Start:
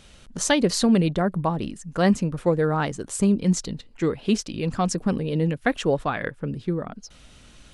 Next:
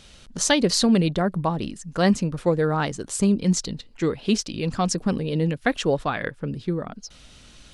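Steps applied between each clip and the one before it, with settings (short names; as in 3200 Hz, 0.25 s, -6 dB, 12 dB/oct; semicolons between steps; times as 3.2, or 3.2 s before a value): bell 4600 Hz +5 dB 1.2 oct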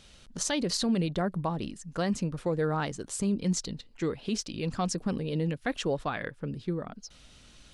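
limiter -14 dBFS, peak gain reduction 8.5 dB; gain -6 dB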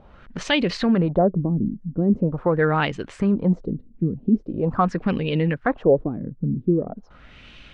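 LFO low-pass sine 0.43 Hz 210–2700 Hz; gain +8 dB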